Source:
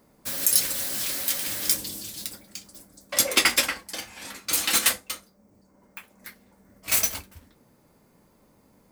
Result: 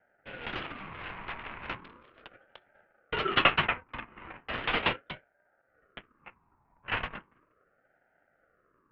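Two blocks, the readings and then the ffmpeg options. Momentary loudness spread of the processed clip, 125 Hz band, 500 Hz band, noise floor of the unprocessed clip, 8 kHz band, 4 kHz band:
23 LU, +3.5 dB, -1.0 dB, -61 dBFS, under -40 dB, -8.0 dB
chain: -af "adynamicsmooth=sensitivity=7:basefreq=530,highpass=f=450:t=q:w=0.5412,highpass=f=450:t=q:w=1.307,lowpass=f=2.4k:t=q:w=0.5176,lowpass=f=2.4k:t=q:w=0.7071,lowpass=f=2.4k:t=q:w=1.932,afreqshift=-77,aeval=exprs='val(0)*sin(2*PI*780*n/s+780*0.4/0.37*sin(2*PI*0.37*n/s))':c=same,volume=4.5dB"

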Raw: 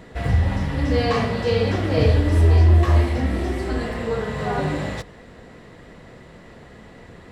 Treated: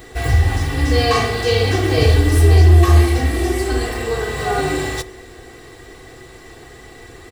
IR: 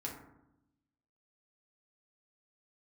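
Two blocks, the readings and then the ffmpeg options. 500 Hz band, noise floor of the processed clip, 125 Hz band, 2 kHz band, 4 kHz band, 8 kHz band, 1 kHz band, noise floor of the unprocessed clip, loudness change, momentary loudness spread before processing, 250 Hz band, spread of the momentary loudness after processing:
+4.0 dB, -41 dBFS, +4.5 dB, +7.0 dB, +9.0 dB, n/a, +5.5 dB, -45 dBFS, +4.5 dB, 11 LU, +2.5 dB, 11 LU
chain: -filter_complex "[0:a]aemphasis=mode=production:type=75kf,aecho=1:1:2.6:0.74,asplit=2[a][b];[1:a]atrim=start_sample=2205,asetrate=57330,aresample=44100[c];[b][c]afir=irnorm=-1:irlink=0,volume=-8.5dB[d];[a][d]amix=inputs=2:normalize=0"

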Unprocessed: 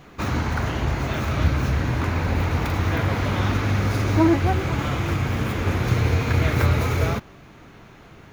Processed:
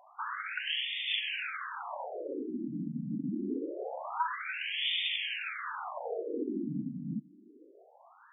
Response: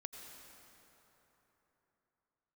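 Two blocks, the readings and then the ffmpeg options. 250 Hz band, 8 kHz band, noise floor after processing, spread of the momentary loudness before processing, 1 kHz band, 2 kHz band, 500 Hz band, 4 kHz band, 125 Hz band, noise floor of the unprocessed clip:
-12.5 dB, under -40 dB, -59 dBFS, 5 LU, -11.0 dB, -8.0 dB, -12.5 dB, +1.0 dB, -26.5 dB, -47 dBFS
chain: -af "aexciter=amount=9.4:drive=4.7:freq=3k,afftfilt=real='re*between(b*sr/1024,210*pow(2600/210,0.5+0.5*sin(2*PI*0.25*pts/sr))/1.41,210*pow(2600/210,0.5+0.5*sin(2*PI*0.25*pts/sr))*1.41)':imag='im*between(b*sr/1024,210*pow(2600/210,0.5+0.5*sin(2*PI*0.25*pts/sr))/1.41,210*pow(2600/210,0.5+0.5*sin(2*PI*0.25*pts/sr))*1.41)':win_size=1024:overlap=0.75,volume=-3.5dB"

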